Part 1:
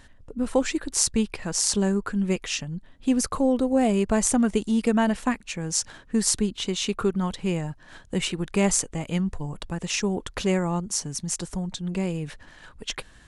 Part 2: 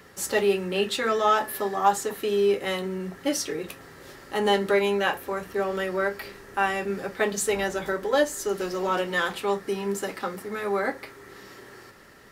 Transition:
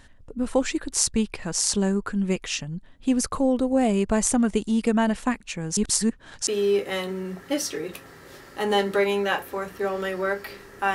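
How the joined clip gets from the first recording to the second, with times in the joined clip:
part 1
5.77–6.47 s: reverse
6.47 s: go over to part 2 from 2.22 s

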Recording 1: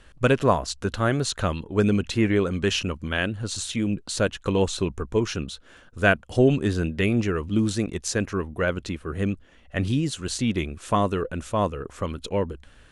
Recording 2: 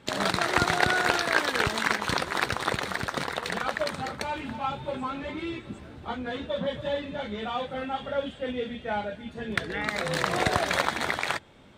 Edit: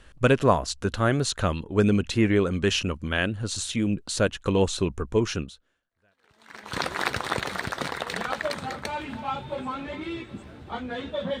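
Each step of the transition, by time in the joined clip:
recording 1
6.10 s: go over to recording 2 from 1.46 s, crossfade 1.42 s exponential

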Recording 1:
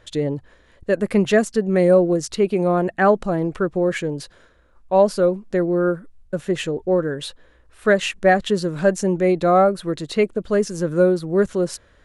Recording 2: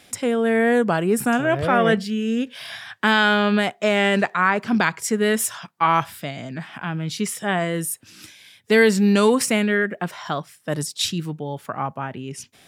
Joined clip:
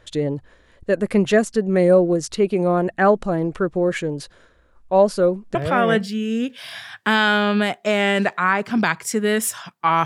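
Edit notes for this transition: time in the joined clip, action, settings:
recording 1
5.55 s: go over to recording 2 from 1.52 s

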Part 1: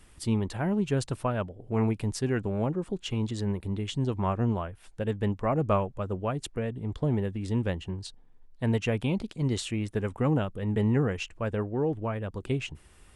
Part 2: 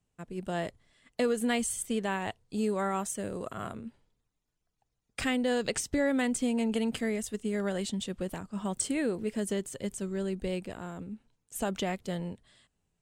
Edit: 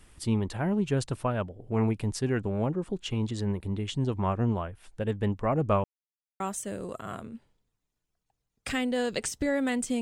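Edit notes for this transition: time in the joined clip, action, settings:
part 1
5.84–6.40 s: mute
6.40 s: go over to part 2 from 2.92 s

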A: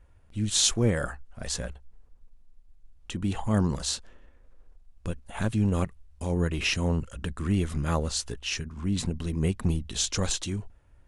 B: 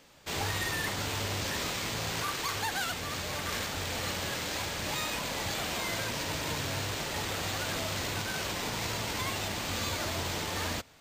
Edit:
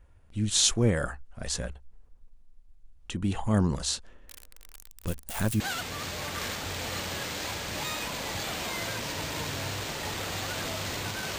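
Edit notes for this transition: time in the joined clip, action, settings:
A
4.29–5.60 s: zero-crossing glitches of -27 dBFS
5.60 s: go over to B from 2.71 s

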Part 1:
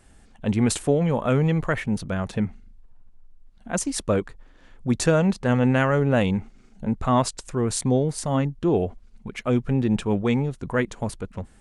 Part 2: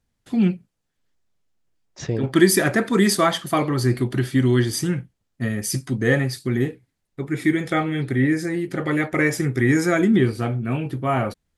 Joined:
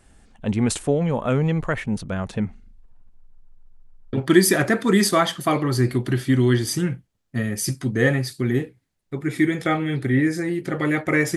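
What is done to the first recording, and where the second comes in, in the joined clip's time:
part 1
3.15 s: stutter in place 0.14 s, 7 plays
4.13 s: go over to part 2 from 2.19 s

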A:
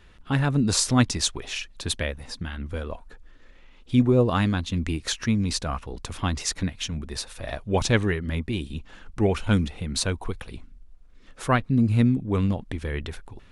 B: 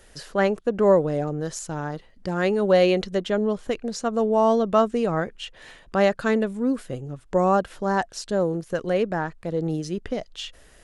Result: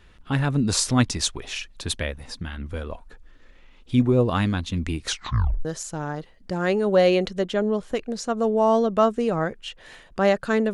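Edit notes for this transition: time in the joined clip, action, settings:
A
5.08 s: tape stop 0.57 s
5.65 s: go over to B from 1.41 s

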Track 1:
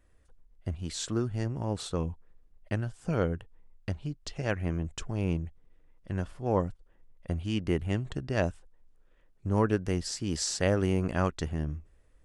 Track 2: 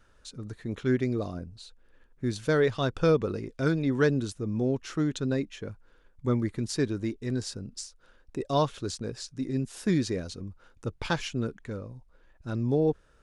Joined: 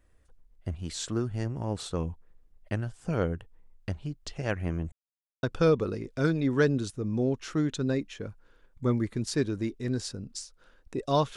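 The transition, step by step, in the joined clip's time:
track 1
4.92–5.43 s: mute
5.43 s: go over to track 2 from 2.85 s

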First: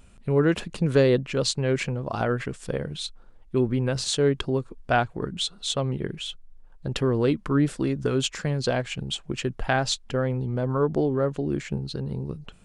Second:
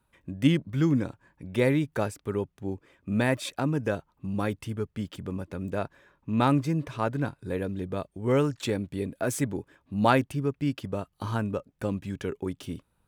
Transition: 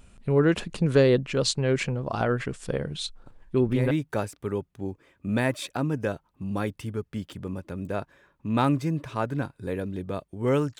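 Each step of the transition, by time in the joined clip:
first
3.26 s: add second from 1.09 s 0.65 s -8 dB
3.91 s: go over to second from 1.74 s

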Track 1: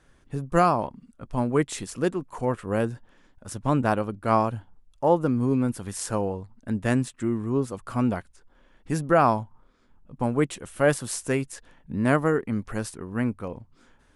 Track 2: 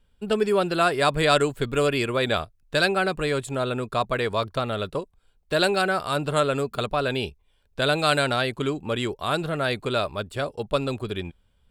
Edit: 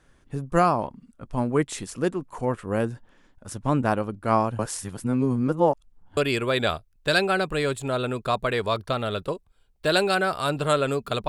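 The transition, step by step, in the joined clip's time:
track 1
4.59–6.17 s: reverse
6.17 s: go over to track 2 from 1.84 s

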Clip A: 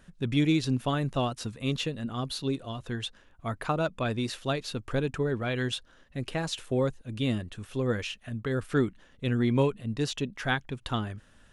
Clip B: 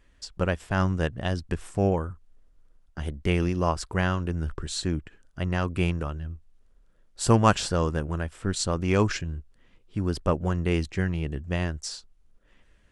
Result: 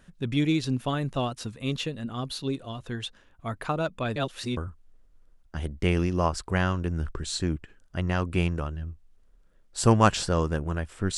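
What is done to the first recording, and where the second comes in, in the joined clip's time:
clip A
4.16–4.57 s: reverse
4.57 s: go over to clip B from 2.00 s

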